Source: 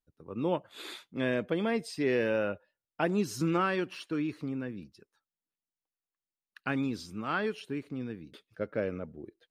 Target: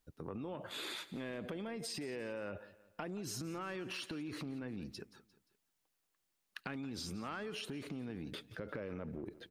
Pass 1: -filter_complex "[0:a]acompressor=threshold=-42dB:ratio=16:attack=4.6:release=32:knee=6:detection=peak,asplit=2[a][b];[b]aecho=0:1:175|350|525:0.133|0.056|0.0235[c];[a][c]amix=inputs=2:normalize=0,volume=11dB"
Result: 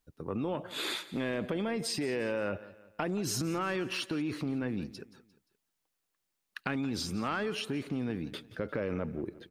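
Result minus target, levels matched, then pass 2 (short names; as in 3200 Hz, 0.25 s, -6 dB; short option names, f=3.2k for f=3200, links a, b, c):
compressor: peak gain reduction -10 dB
-filter_complex "[0:a]acompressor=threshold=-52.5dB:ratio=16:attack=4.6:release=32:knee=6:detection=peak,asplit=2[a][b];[b]aecho=0:1:175|350|525:0.133|0.056|0.0235[c];[a][c]amix=inputs=2:normalize=0,volume=11dB"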